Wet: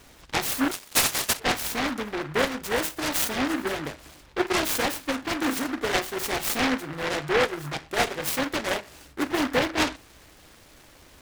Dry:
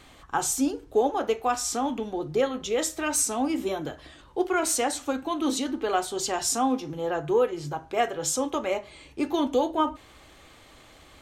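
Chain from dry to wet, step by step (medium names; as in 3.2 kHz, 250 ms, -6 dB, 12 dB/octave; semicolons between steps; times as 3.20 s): 0.71–1.40 s: frequency inversion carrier 3.8 kHz; delay time shaken by noise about 1.2 kHz, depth 0.26 ms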